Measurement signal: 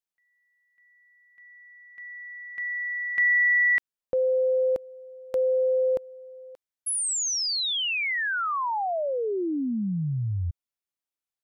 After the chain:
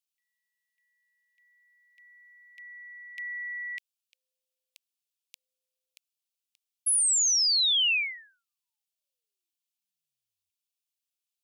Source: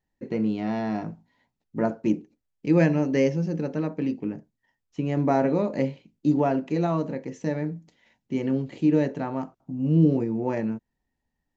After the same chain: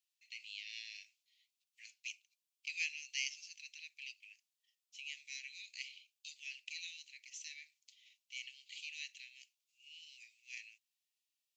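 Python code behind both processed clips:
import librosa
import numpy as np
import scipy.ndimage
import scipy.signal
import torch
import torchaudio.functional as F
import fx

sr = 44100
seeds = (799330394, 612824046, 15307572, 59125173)

y = scipy.signal.sosfilt(scipy.signal.cheby2(8, 80, 1300.0, 'highpass', fs=sr, output='sos'), x)
y = F.gain(torch.from_numpy(y), 3.5).numpy()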